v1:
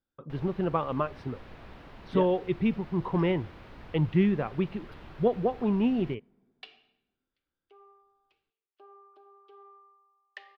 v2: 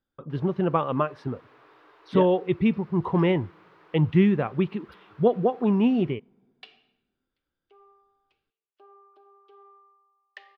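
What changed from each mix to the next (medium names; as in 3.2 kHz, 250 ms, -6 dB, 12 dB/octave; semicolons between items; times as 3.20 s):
speech +4.5 dB; first sound: add rippled Chebyshev high-pass 300 Hz, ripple 9 dB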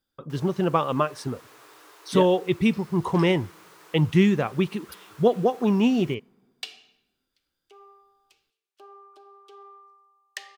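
first sound: send +9.5 dB; second sound +4.0 dB; master: remove distance through air 370 m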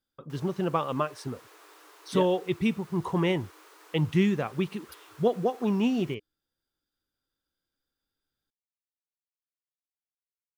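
speech -4.5 dB; second sound: muted; reverb: off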